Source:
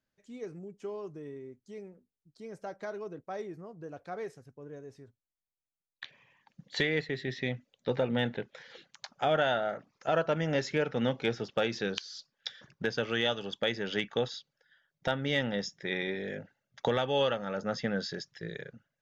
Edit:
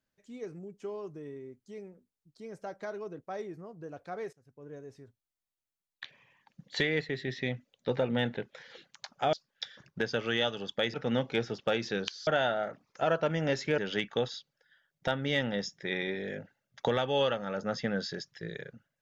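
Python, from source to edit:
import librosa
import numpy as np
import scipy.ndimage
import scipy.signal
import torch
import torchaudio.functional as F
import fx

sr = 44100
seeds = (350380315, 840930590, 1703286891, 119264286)

y = fx.edit(x, sr, fx.fade_in_from(start_s=4.33, length_s=0.39, floor_db=-22.5),
    fx.swap(start_s=9.33, length_s=1.51, other_s=12.17, other_length_s=1.61), tone=tone)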